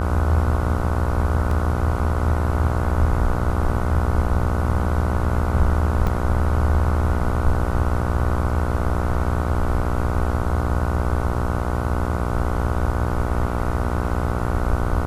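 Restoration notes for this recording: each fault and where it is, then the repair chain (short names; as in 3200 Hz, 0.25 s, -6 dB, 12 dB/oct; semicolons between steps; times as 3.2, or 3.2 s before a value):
buzz 60 Hz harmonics 25 -25 dBFS
1.51 gap 2.9 ms
6.07 gap 4.2 ms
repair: de-hum 60 Hz, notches 25; interpolate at 1.51, 2.9 ms; interpolate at 6.07, 4.2 ms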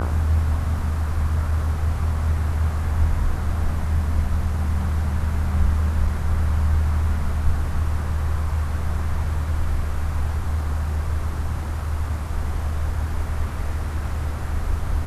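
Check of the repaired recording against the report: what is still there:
none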